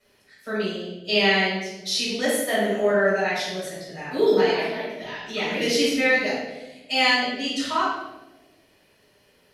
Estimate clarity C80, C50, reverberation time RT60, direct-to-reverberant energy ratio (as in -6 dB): 2.5 dB, 0.0 dB, 1.2 s, -11.0 dB